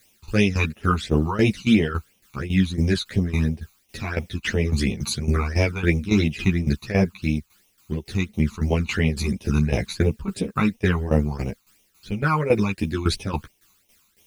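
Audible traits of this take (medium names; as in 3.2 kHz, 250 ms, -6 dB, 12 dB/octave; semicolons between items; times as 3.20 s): a quantiser's noise floor 10-bit, dither triangular; phasing stages 12, 2.9 Hz, lowest notch 530–1500 Hz; tremolo saw down 3.6 Hz, depth 80%; a shimmering, thickened sound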